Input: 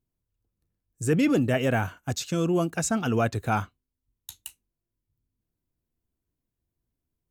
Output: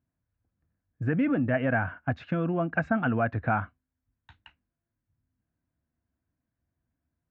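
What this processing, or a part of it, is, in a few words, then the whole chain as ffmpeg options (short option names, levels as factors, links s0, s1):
bass amplifier: -af "acompressor=threshold=0.0501:ratio=4,highpass=63,equalizer=f=75:t=q:w=4:g=4,equalizer=f=260:t=q:w=4:g=3,equalizer=f=400:t=q:w=4:g=-10,equalizer=f=670:t=q:w=4:g=4,equalizer=f=1600:t=q:w=4:g=7,lowpass=f=2200:w=0.5412,lowpass=f=2200:w=1.3066,volume=1.33"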